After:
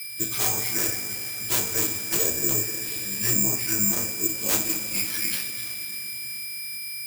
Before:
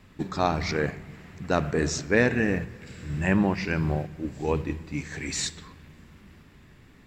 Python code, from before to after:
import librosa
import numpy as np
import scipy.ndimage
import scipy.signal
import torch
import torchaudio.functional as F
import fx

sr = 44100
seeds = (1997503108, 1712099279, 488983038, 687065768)

y = np.where(x < 0.0, 10.0 ** (-7.0 / 20.0) * x, x)
y = fx.weighting(y, sr, curve='D')
y = fx.env_lowpass_down(y, sr, base_hz=730.0, full_db=-19.5)
y = fx.high_shelf(y, sr, hz=7900.0, db=11.0)
y = y + 0.75 * np.pad(y, (int(6.0 * sr / 1000.0), 0))[:len(y)]
y = fx.rider(y, sr, range_db=4, speed_s=0.5)
y = fx.pitch_keep_formants(y, sr, semitones=-7.5)
y = (np.mod(10.0 ** (17.0 / 20.0) * y + 1.0, 2.0) - 1.0) / 10.0 ** (17.0 / 20.0)
y = y + 10.0 ** (-31.0 / 20.0) * np.sin(2.0 * np.pi * 5000.0 * np.arange(len(y)) / sr)
y = fx.rev_double_slope(y, sr, seeds[0], early_s=0.26, late_s=4.2, knee_db=-19, drr_db=-4.5)
y = (np.kron(y[::6], np.eye(6)[0]) * 6)[:len(y)]
y = y * librosa.db_to_amplitude(-11.5)